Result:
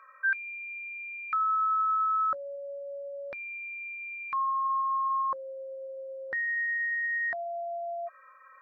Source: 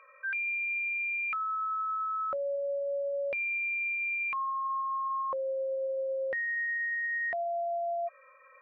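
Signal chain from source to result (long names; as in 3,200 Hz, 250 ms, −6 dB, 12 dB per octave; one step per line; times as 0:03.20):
drawn EQ curve 350 Hz 0 dB, 500 Hz −9 dB, 880 Hz +2 dB, 1,600 Hz +8 dB, 2,700 Hz −12 dB, 4,200 Hz +4 dB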